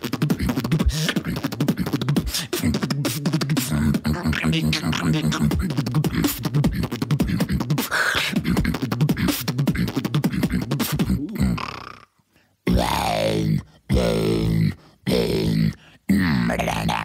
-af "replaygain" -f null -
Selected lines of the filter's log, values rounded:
track_gain = +4.4 dB
track_peak = 0.261